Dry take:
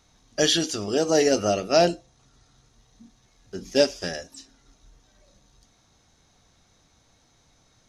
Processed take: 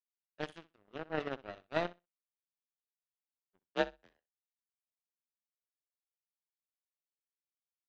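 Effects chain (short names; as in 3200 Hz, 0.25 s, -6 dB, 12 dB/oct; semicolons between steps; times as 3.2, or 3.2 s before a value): steep low-pass 3000 Hz 36 dB/oct; power-law curve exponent 3; 3.62–4.18 frequency shift +47 Hz; on a send: flutter echo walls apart 10.8 m, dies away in 0.21 s; on the sum: gain -5.5 dB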